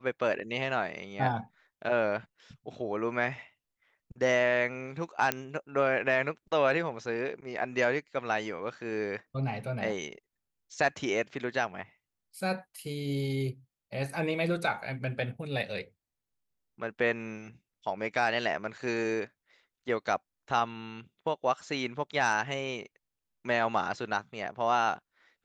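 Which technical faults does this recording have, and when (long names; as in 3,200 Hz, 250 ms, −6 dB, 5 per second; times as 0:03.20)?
0:05.32: click −10 dBFS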